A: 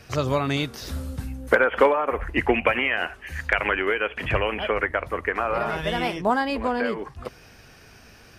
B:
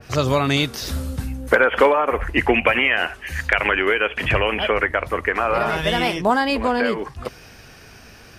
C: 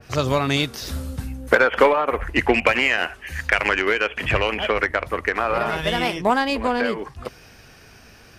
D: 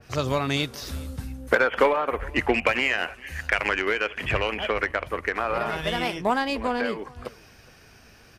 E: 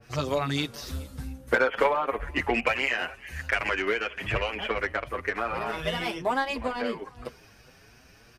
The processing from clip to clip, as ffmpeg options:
-filter_complex "[0:a]asplit=2[s0][s1];[s1]alimiter=limit=0.178:level=0:latency=1,volume=0.794[s2];[s0][s2]amix=inputs=2:normalize=0,adynamicequalizer=threshold=0.0224:dfrequency=2300:dqfactor=0.7:tfrequency=2300:tqfactor=0.7:attack=5:release=100:ratio=0.375:range=2:mode=boostabove:tftype=highshelf"
-af "aeval=exprs='0.891*(cos(1*acos(clip(val(0)/0.891,-1,1)))-cos(1*PI/2))+0.0398*(cos(7*acos(clip(val(0)/0.891,-1,1)))-cos(7*PI/2))':c=same"
-af "aecho=1:1:416:0.0668,volume=0.596"
-filter_complex "[0:a]asplit=2[s0][s1];[s1]adelay=6.8,afreqshift=2.8[s2];[s0][s2]amix=inputs=2:normalize=1"

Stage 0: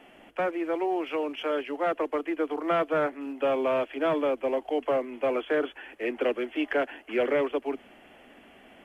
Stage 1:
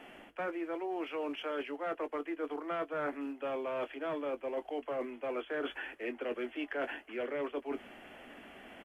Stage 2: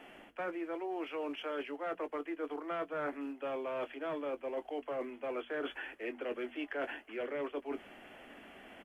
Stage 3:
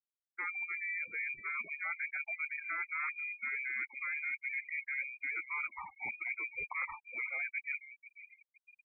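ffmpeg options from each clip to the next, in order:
-filter_complex "[0:a]asplit=2[s0][s1];[s1]adelay=21,volume=0.224[s2];[s0][s2]amix=inputs=2:normalize=0,areverse,acompressor=threshold=0.0178:ratio=6,areverse,equalizer=f=1500:w=1.5:g=3"
-af "bandreject=f=60:t=h:w=6,bandreject=f=120:t=h:w=6,bandreject=f=180:t=h:w=6,bandreject=f=240:t=h:w=6,volume=0.841"
-filter_complex "[0:a]asplit=2[s0][s1];[s1]adelay=490,lowpass=f=2000:p=1,volume=0.2,asplit=2[s2][s3];[s3]adelay=490,lowpass=f=2000:p=1,volume=0.52,asplit=2[s4][s5];[s5]adelay=490,lowpass=f=2000:p=1,volume=0.52,asplit=2[s6][s7];[s7]adelay=490,lowpass=f=2000:p=1,volume=0.52,asplit=2[s8][s9];[s9]adelay=490,lowpass=f=2000:p=1,volume=0.52[s10];[s0][s2][s4][s6][s8][s10]amix=inputs=6:normalize=0,afftfilt=real='re*gte(hypot(re,im),0.0178)':imag='im*gte(hypot(re,im),0.0178)':win_size=1024:overlap=0.75,lowpass=f=2300:t=q:w=0.5098,lowpass=f=2300:t=q:w=0.6013,lowpass=f=2300:t=q:w=0.9,lowpass=f=2300:t=q:w=2.563,afreqshift=-2700"

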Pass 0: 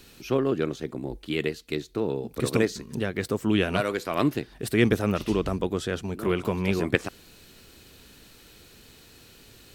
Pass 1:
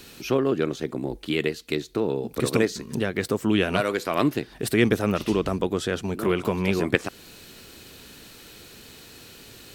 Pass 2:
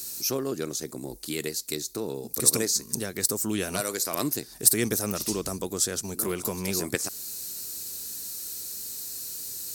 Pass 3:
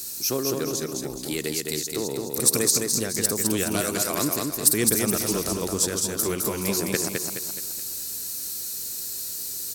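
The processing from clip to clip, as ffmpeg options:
-filter_complex "[0:a]lowshelf=f=74:g=-9,asplit=2[s0][s1];[s1]acompressor=threshold=0.0251:ratio=6,volume=1.06[s2];[s0][s2]amix=inputs=2:normalize=0"
-af "aexciter=amount=13:drive=3.7:freq=4600,volume=0.422"
-filter_complex "[0:a]asplit=2[s0][s1];[s1]asoftclip=type=hard:threshold=0.119,volume=0.447[s2];[s0][s2]amix=inputs=2:normalize=0,aecho=1:1:211|422|633|844|1055:0.668|0.287|0.124|0.0531|0.0228,volume=0.891"

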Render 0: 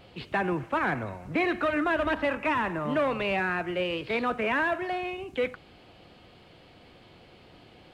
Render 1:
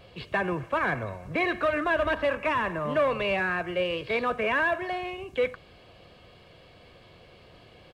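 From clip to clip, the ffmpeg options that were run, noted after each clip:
-af "aecho=1:1:1.8:0.42"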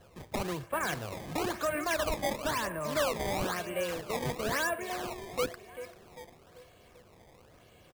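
-filter_complex "[0:a]asplit=2[s0][s1];[s1]adelay=392,lowpass=f=3900:p=1,volume=0.266,asplit=2[s2][s3];[s3]adelay=392,lowpass=f=3900:p=1,volume=0.53,asplit=2[s4][s5];[s5]adelay=392,lowpass=f=3900:p=1,volume=0.53,asplit=2[s6][s7];[s7]adelay=392,lowpass=f=3900:p=1,volume=0.53,asplit=2[s8][s9];[s9]adelay=392,lowpass=f=3900:p=1,volume=0.53,asplit=2[s10][s11];[s11]adelay=392,lowpass=f=3900:p=1,volume=0.53[s12];[s0][s2][s4][s6][s8][s10][s12]amix=inputs=7:normalize=0,acrusher=samples=18:mix=1:aa=0.000001:lfo=1:lforange=28.8:lforate=1,volume=0.501"

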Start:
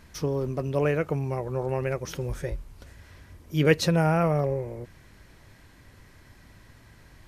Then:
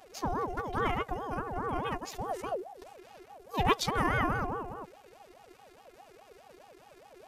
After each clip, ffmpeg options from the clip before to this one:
-af "afftfilt=real='hypot(re,im)*cos(PI*b)':imag='0':win_size=512:overlap=0.75,aeval=exprs='val(0)*sin(2*PI*590*n/s+590*0.4/4.8*sin(2*PI*4.8*n/s))':c=same,volume=1.33"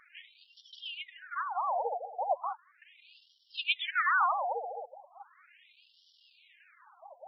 -af "afftfilt=real='re*between(b*sr/1024,610*pow(4100/610,0.5+0.5*sin(2*PI*0.37*pts/sr))/1.41,610*pow(4100/610,0.5+0.5*sin(2*PI*0.37*pts/sr))*1.41)':imag='im*between(b*sr/1024,610*pow(4100/610,0.5+0.5*sin(2*PI*0.37*pts/sr))/1.41,610*pow(4100/610,0.5+0.5*sin(2*PI*0.37*pts/sr))*1.41)':win_size=1024:overlap=0.75,volume=2.11"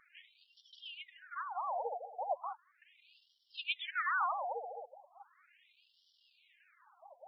-af "lowshelf=f=320:g=7.5,volume=0.447"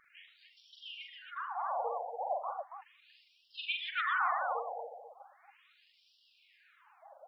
-af "aecho=1:1:43|81|108|141|279:0.668|0.266|0.1|0.168|0.473"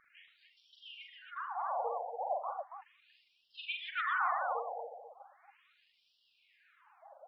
-af "highshelf=f=3900:g=-11"

